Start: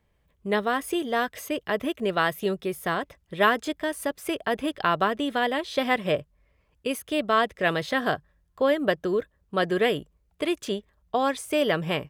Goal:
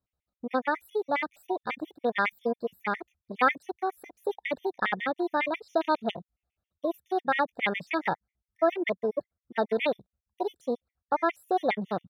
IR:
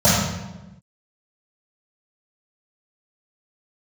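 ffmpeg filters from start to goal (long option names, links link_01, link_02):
-af "afwtdn=0.0355,asetrate=53981,aresample=44100,atempo=0.816958,afftfilt=real='re*gt(sin(2*PI*7.3*pts/sr)*(1-2*mod(floor(b*sr/1024/1800),2)),0)':imag='im*gt(sin(2*PI*7.3*pts/sr)*(1-2*mod(floor(b*sr/1024/1800),2)),0)':win_size=1024:overlap=0.75"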